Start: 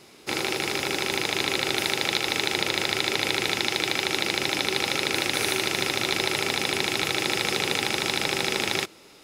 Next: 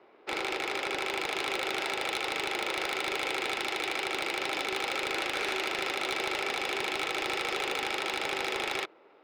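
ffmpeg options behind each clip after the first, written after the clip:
-filter_complex "[0:a]adynamicsmooth=sensitivity=7.5:basefreq=1100,acrossover=split=360 4500:gain=0.0631 1 0.112[s0][s1][s2];[s0][s1][s2]amix=inputs=3:normalize=0,asoftclip=type=tanh:threshold=0.0631"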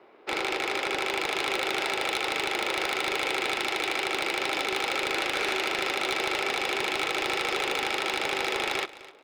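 -af "aecho=1:1:256|512:0.126|0.029,volume=1.5"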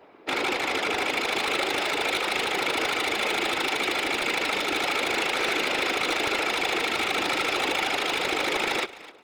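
-af "afftfilt=real='hypot(re,im)*cos(2*PI*random(0))':imag='hypot(re,im)*sin(2*PI*random(1))':win_size=512:overlap=0.75,volume=2.66"

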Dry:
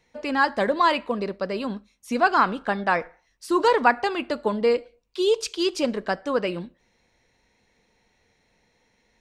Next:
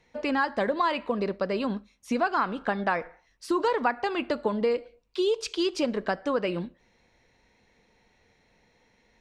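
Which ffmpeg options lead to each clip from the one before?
-af "highshelf=f=7900:g=-12,acompressor=threshold=0.0501:ratio=3,volume=1.26"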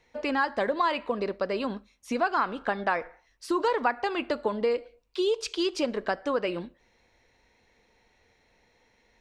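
-af "equalizer=f=170:t=o:w=1:g=-6.5"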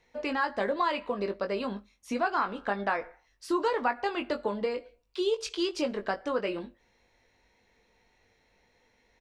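-filter_complex "[0:a]asplit=2[s0][s1];[s1]adelay=20,volume=0.447[s2];[s0][s2]amix=inputs=2:normalize=0,volume=0.708"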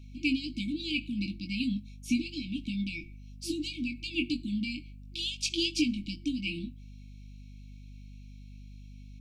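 -af "aeval=exprs='val(0)+0.00251*(sin(2*PI*50*n/s)+sin(2*PI*2*50*n/s)/2+sin(2*PI*3*50*n/s)/3+sin(2*PI*4*50*n/s)/4+sin(2*PI*5*50*n/s)/5)':c=same,afftfilt=real='re*(1-between(b*sr/4096,340,2200))':imag='im*(1-between(b*sr/4096,340,2200))':win_size=4096:overlap=0.75,volume=2"

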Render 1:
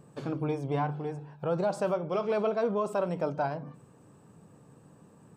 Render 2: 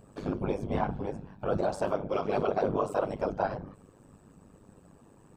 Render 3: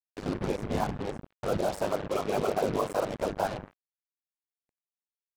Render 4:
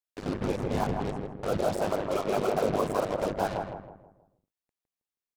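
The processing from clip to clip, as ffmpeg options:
-af "bandreject=f=60:t=h:w=6,bandreject=f=120:t=h:w=6,bandreject=f=180:t=h:w=6,afftfilt=real='hypot(re,im)*cos(2*PI*random(0))':imag='hypot(re,im)*sin(2*PI*random(1))':win_size=512:overlap=0.75,tremolo=f=100:d=0.71,volume=2.82"
-af "acrusher=bits=5:mix=0:aa=0.5"
-filter_complex "[0:a]asplit=2[s0][s1];[s1]adelay=160,lowpass=f=1400:p=1,volume=0.668,asplit=2[s2][s3];[s3]adelay=160,lowpass=f=1400:p=1,volume=0.42,asplit=2[s4][s5];[s5]adelay=160,lowpass=f=1400:p=1,volume=0.42,asplit=2[s6][s7];[s7]adelay=160,lowpass=f=1400:p=1,volume=0.42,asplit=2[s8][s9];[s9]adelay=160,lowpass=f=1400:p=1,volume=0.42[s10];[s0][s2][s4][s6][s8][s10]amix=inputs=6:normalize=0"

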